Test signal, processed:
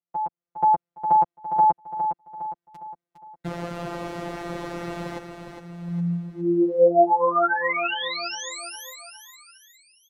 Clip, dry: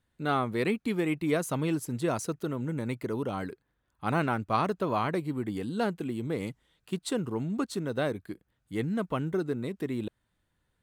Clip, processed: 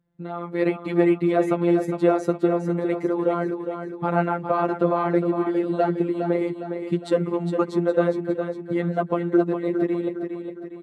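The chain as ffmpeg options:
ffmpeg -i in.wav -filter_complex "[0:a]lowshelf=frequency=200:gain=4.5,aecho=1:1:7.3:0.59,acrossover=split=390[link_01][link_02];[link_01]acompressor=threshold=-44dB:ratio=6[link_03];[link_02]alimiter=limit=-22.5dB:level=0:latency=1:release=159[link_04];[link_03][link_04]amix=inputs=2:normalize=0,afftfilt=real='hypot(re,im)*cos(PI*b)':imag='0':win_size=1024:overlap=0.75,dynaudnorm=framelen=330:gausssize=3:maxgain=11.5dB,bandpass=frequency=250:width_type=q:width=0.59:csg=0,asplit=2[link_05][link_06];[link_06]aecho=0:1:409|818|1227|1636|2045:0.422|0.194|0.0892|0.041|0.0189[link_07];[link_05][link_07]amix=inputs=2:normalize=0,volume=8dB" out.wav

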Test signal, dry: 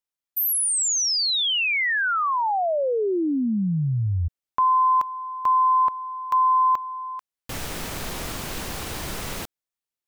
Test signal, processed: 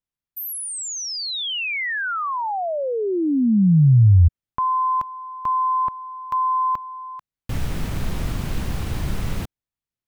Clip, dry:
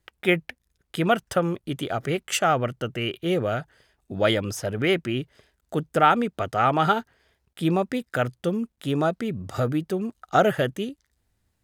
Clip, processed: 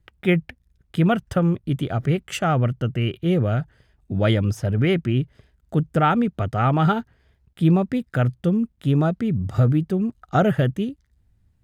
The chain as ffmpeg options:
ffmpeg -i in.wav -af "bass=frequency=250:gain=14,treble=frequency=4000:gain=-5,volume=-2dB" out.wav

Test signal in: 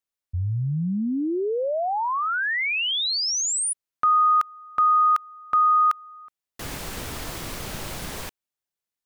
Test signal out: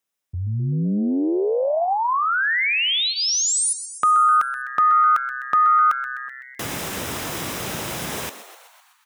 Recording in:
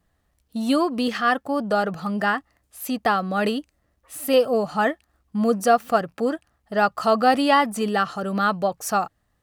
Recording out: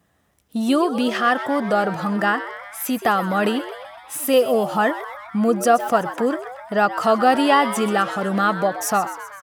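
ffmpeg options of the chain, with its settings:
ffmpeg -i in.wav -filter_complex "[0:a]asplit=2[link_01][link_02];[link_02]acompressor=threshold=-32dB:ratio=6:attack=6.3:release=142:knee=1:detection=rms,volume=3dB[link_03];[link_01][link_03]amix=inputs=2:normalize=0,highpass=110,bandreject=frequency=4400:width=8.6,asplit=8[link_04][link_05][link_06][link_07][link_08][link_09][link_10][link_11];[link_05]adelay=127,afreqshift=130,volume=-13dB[link_12];[link_06]adelay=254,afreqshift=260,volume=-17dB[link_13];[link_07]adelay=381,afreqshift=390,volume=-21dB[link_14];[link_08]adelay=508,afreqshift=520,volume=-25dB[link_15];[link_09]adelay=635,afreqshift=650,volume=-29.1dB[link_16];[link_10]adelay=762,afreqshift=780,volume=-33.1dB[link_17];[link_11]adelay=889,afreqshift=910,volume=-37.1dB[link_18];[link_04][link_12][link_13][link_14][link_15][link_16][link_17][link_18]amix=inputs=8:normalize=0" out.wav

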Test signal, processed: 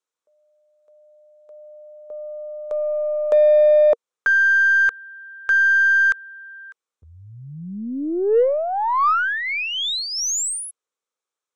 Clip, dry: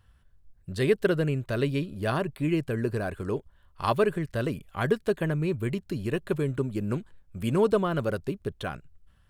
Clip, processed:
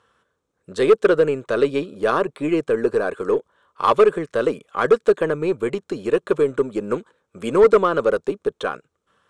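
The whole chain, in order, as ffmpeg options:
ffmpeg -i in.wav -af "highpass=340,equalizer=frequency=470:width_type=q:width=4:gain=9,equalizer=frequency=700:width_type=q:width=4:gain=-4,equalizer=frequency=1200:width_type=q:width=4:gain=6,equalizer=frequency=1900:width_type=q:width=4:gain=-5,equalizer=frequency=2800:width_type=q:width=4:gain=-5,equalizer=frequency=4700:width_type=q:width=4:gain=-8,lowpass=frequency=8100:width=0.5412,lowpass=frequency=8100:width=1.3066,aeval=exprs='0.447*sin(PI/2*1.78*val(0)/0.447)':channel_layout=same,aeval=exprs='0.473*(cos(1*acos(clip(val(0)/0.473,-1,1)))-cos(1*PI/2))+0.00668*(cos(8*acos(clip(val(0)/0.473,-1,1)))-cos(8*PI/2))':channel_layout=same" out.wav

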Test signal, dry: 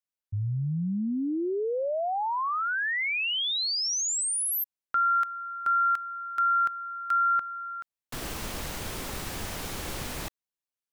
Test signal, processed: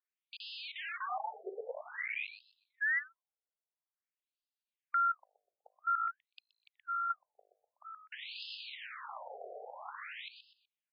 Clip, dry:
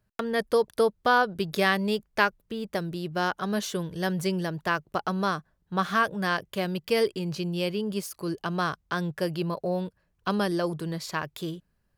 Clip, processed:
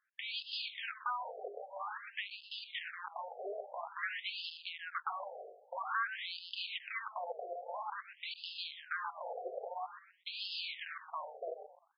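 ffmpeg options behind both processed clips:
ffmpeg -i in.wav -filter_complex "[0:a]bandreject=frequency=51.04:width_type=h:width=4,bandreject=frequency=102.08:width_type=h:width=4,bandreject=frequency=153.12:width_type=h:width=4,bandreject=frequency=204.16:width_type=h:width=4,bandreject=frequency=255.2:width_type=h:width=4,bandreject=frequency=306.24:width_type=h:width=4,bandreject=frequency=357.28:width_type=h:width=4,bandreject=frequency=408.32:width_type=h:width=4,bandreject=frequency=459.36:width_type=h:width=4,bandreject=frequency=510.4:width_type=h:width=4,bandreject=frequency=561.44:width_type=h:width=4,bandreject=frequency=612.48:width_type=h:width=4,bandreject=frequency=663.52:width_type=h:width=4,bandreject=frequency=714.56:width_type=h:width=4,bandreject=frequency=765.6:width_type=h:width=4,acrossover=split=960[link_01][link_02];[link_01]aeval=exprs='(mod(29.9*val(0)+1,2)-1)/29.9':channel_layout=same[link_03];[link_03][link_02]amix=inputs=2:normalize=0,asubboost=boost=3:cutoff=60,asplit=2[link_04][link_05];[link_05]asplit=3[link_06][link_07][link_08];[link_06]adelay=124,afreqshift=-55,volume=-13dB[link_09];[link_07]adelay=248,afreqshift=-110,volume=-23.2dB[link_10];[link_08]adelay=372,afreqshift=-165,volume=-33.3dB[link_11];[link_09][link_10][link_11]amix=inputs=3:normalize=0[link_12];[link_04][link_12]amix=inputs=2:normalize=0,acompressor=threshold=-30dB:ratio=6:attack=1.5:release=112:knee=6:detection=rms,afftfilt=real='re*between(b*sr/1024,540*pow(3700/540,0.5+0.5*sin(2*PI*0.5*pts/sr))/1.41,540*pow(3700/540,0.5+0.5*sin(2*PI*0.5*pts/sr))*1.41)':imag='im*between(b*sr/1024,540*pow(3700/540,0.5+0.5*sin(2*PI*0.5*pts/sr))/1.41,540*pow(3700/540,0.5+0.5*sin(2*PI*0.5*pts/sr))*1.41)':win_size=1024:overlap=0.75,volume=2.5dB" out.wav

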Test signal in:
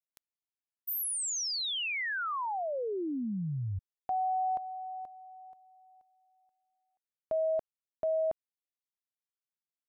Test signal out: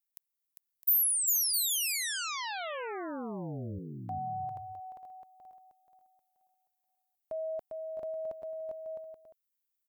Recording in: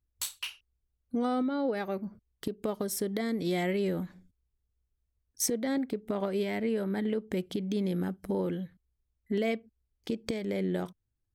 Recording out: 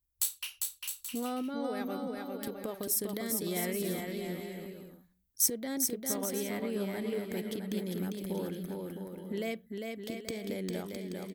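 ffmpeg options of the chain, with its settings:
ffmpeg -i in.wav -af "aemphasis=mode=production:type=50fm,aecho=1:1:400|660|829|938.8|1010:0.631|0.398|0.251|0.158|0.1,volume=-6dB" out.wav

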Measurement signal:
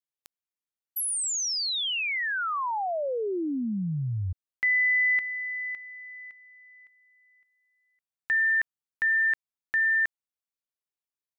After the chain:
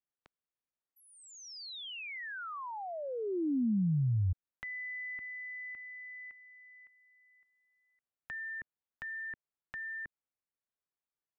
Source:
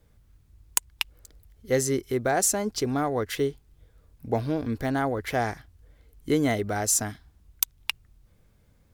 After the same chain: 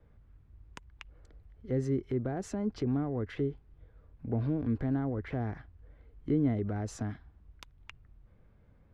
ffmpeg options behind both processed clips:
ffmpeg -i in.wav -filter_complex "[0:a]lowpass=1900,acrossover=split=320[link_01][link_02];[link_02]acompressor=threshold=-43dB:ratio=4:attack=1.6:release=65:knee=2.83:detection=peak[link_03];[link_01][link_03]amix=inputs=2:normalize=0" out.wav

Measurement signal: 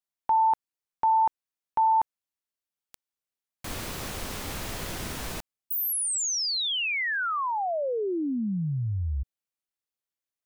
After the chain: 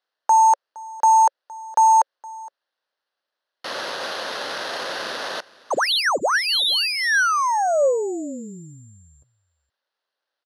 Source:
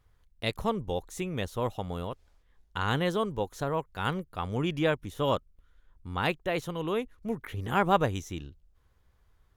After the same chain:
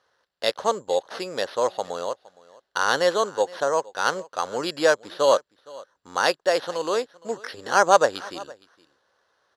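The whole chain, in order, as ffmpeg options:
ffmpeg -i in.wav -af "acrusher=samples=6:mix=1:aa=0.000001,highpass=500,equalizer=frequency=550:width_type=q:width=4:gain=7,equalizer=frequency=1600:width_type=q:width=4:gain=5,equalizer=frequency=2300:width_type=q:width=4:gain=-9,equalizer=frequency=4300:width_type=q:width=4:gain=4,equalizer=frequency=8600:width_type=q:width=4:gain=-10,lowpass=frequency=9200:width=0.5412,lowpass=frequency=9200:width=1.3066,aecho=1:1:465:0.0794,acontrast=24,volume=3dB" out.wav

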